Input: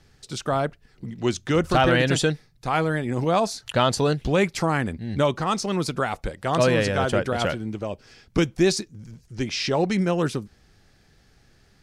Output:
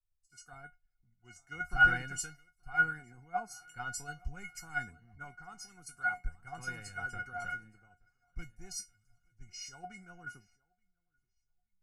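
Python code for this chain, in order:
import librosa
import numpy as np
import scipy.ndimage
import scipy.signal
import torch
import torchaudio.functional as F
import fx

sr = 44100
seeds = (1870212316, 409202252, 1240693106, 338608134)

p1 = fx.peak_eq(x, sr, hz=720.0, db=3.5, octaves=2.0)
p2 = fx.fixed_phaser(p1, sr, hz=1500.0, stages=4)
p3 = 10.0 ** (-19.5 / 20.0) * np.tanh(p2 / 10.0 ** (-19.5 / 20.0))
p4 = p2 + F.gain(torch.from_numpy(p3), -7.0).numpy()
p5 = fx.comb_fb(p4, sr, f0_hz=720.0, decay_s=0.19, harmonics='all', damping=0.0, mix_pct=100)
p6 = p5 + fx.echo_feedback(p5, sr, ms=876, feedback_pct=54, wet_db=-19.0, dry=0)
y = fx.band_widen(p6, sr, depth_pct=100)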